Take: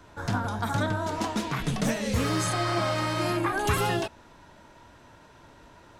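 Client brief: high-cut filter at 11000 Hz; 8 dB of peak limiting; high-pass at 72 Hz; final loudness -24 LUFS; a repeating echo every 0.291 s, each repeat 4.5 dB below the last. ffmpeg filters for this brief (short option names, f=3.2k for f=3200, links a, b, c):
-af "highpass=72,lowpass=11k,alimiter=limit=-22dB:level=0:latency=1,aecho=1:1:291|582|873|1164|1455|1746|2037|2328|2619:0.596|0.357|0.214|0.129|0.0772|0.0463|0.0278|0.0167|0.01,volume=6dB"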